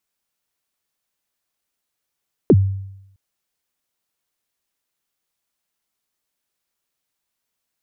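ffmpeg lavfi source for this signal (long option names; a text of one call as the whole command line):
ffmpeg -f lavfi -i "aevalsrc='0.531*pow(10,-3*t/0.83)*sin(2*PI*(480*0.049/log(97/480)*(exp(log(97/480)*min(t,0.049)/0.049)-1)+97*max(t-0.049,0)))':duration=0.66:sample_rate=44100" out.wav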